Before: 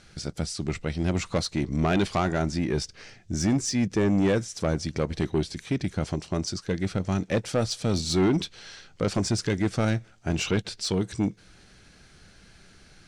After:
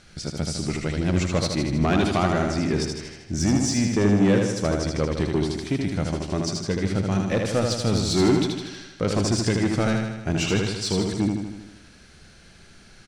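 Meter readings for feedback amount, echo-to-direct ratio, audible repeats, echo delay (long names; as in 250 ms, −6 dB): 60%, −2.0 dB, 7, 78 ms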